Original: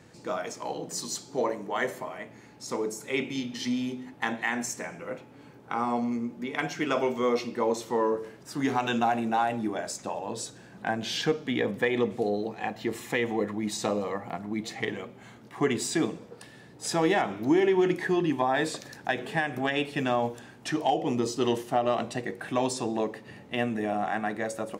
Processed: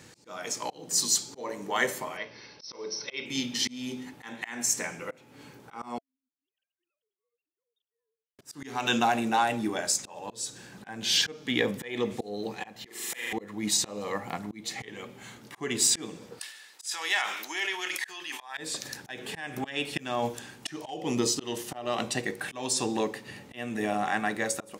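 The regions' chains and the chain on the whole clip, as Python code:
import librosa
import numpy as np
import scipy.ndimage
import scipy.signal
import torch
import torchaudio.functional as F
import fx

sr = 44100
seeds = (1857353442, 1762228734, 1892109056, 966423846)

y = fx.chain(x, sr, fx.brickwall_lowpass(high_hz=6100.0),
    fx.bass_treble(bass_db=-6, treble_db=9),
    fx.comb(ms=1.9, depth=0.34), at=(2.17, 3.26))
y = fx.chain(y, sr, fx.sine_speech(),
    fx.cheby2_highpass(hz=2400.0, order=4, stop_db=60), at=(5.98, 8.39))
y = fx.chain(y, sr, fx.highpass(hz=1300.0, slope=6),
    fx.room_flutter(wall_m=7.4, rt60_s=1.1), at=(12.86, 13.33))
y = fx.chain(y, sr, fx.highpass(hz=1300.0, slope=12),
    fx.sustainer(db_per_s=63.0), at=(16.39, 18.57))
y = fx.auto_swell(y, sr, attack_ms=302.0)
y = fx.high_shelf(y, sr, hz=2400.0, db=11.5)
y = fx.notch(y, sr, hz=670.0, q=12.0)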